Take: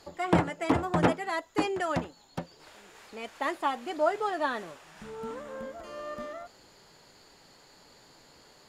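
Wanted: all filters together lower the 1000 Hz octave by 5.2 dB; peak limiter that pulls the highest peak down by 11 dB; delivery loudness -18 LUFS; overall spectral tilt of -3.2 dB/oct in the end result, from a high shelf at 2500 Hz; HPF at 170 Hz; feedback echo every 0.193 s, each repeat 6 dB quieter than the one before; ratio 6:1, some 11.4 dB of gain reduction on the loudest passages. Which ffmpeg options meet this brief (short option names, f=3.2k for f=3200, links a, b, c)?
-af "highpass=170,equalizer=f=1k:t=o:g=-8.5,highshelf=f=2.5k:g=7.5,acompressor=threshold=-35dB:ratio=6,alimiter=level_in=8.5dB:limit=-24dB:level=0:latency=1,volume=-8.5dB,aecho=1:1:193|386|579|772|965|1158:0.501|0.251|0.125|0.0626|0.0313|0.0157,volume=25dB"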